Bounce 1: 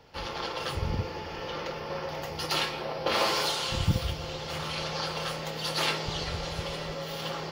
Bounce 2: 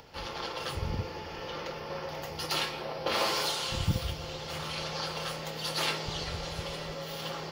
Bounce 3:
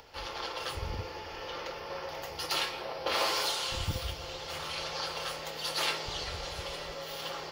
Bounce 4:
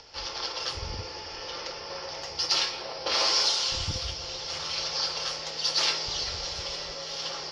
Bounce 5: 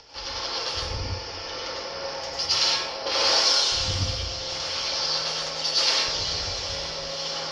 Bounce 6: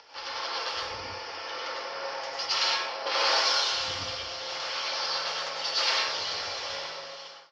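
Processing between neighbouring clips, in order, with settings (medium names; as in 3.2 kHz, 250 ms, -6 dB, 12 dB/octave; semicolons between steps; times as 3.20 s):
treble shelf 6.7 kHz +4 dB; upward compressor, threshold -44 dBFS; trim -3 dB
peaking EQ 170 Hz -10.5 dB 1.5 oct
resonant low-pass 5.4 kHz, resonance Q 5.1
plate-style reverb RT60 0.58 s, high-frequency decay 0.8×, pre-delay 85 ms, DRR -2.5 dB
fade out at the end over 0.77 s; band-pass filter 1.4 kHz, Q 0.66; trim +1.5 dB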